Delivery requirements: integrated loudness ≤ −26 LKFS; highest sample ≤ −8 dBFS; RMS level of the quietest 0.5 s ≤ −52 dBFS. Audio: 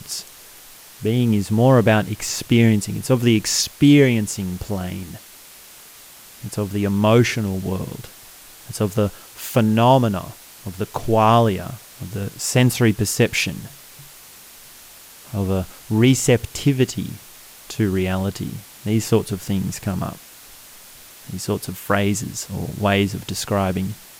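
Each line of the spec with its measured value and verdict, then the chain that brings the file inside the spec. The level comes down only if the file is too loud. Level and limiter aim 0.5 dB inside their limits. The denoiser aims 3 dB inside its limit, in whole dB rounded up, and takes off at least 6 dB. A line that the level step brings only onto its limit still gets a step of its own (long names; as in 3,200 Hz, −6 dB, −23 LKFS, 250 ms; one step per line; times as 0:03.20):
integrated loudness −20.0 LKFS: out of spec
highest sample −2.5 dBFS: out of spec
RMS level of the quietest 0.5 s −44 dBFS: out of spec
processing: broadband denoise 6 dB, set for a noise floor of −44 dBFS
level −6.5 dB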